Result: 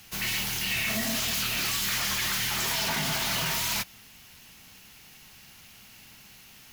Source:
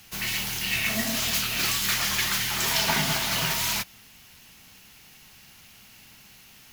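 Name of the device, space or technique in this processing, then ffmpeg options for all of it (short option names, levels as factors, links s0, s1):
limiter into clipper: -af "alimiter=limit=0.126:level=0:latency=1:release=20,asoftclip=type=hard:threshold=0.0668"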